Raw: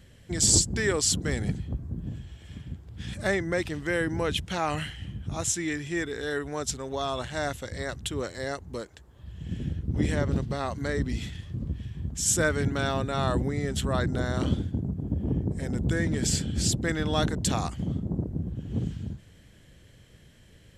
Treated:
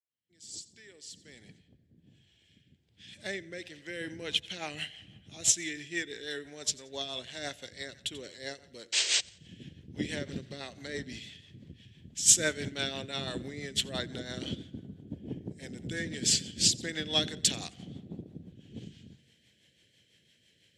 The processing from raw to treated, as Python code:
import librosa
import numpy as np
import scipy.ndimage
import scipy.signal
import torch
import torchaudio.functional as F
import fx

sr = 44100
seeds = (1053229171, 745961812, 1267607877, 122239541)

y = fx.fade_in_head(x, sr, length_s=5.44)
y = fx.rev_spring(y, sr, rt60_s=2.3, pass_ms=(58,), chirp_ms=60, drr_db=20.0)
y = fx.spec_paint(y, sr, seeds[0], shape='noise', start_s=8.92, length_s=0.29, low_hz=320.0, high_hz=8600.0, level_db=-30.0)
y = fx.weighting(y, sr, curve='D')
y = fx.echo_feedback(y, sr, ms=88, feedback_pct=42, wet_db=-17)
y = fx.rotary_switch(y, sr, hz=1.2, then_hz=6.0, switch_at_s=3.49)
y = scipy.signal.sosfilt(scipy.signal.butter(2, 76.0, 'highpass', fs=sr, output='sos'), y)
y = fx.peak_eq(y, sr, hz=1200.0, db=-9.0, octaves=0.65)
y = fx.upward_expand(y, sr, threshold_db=-38.0, expansion=1.5)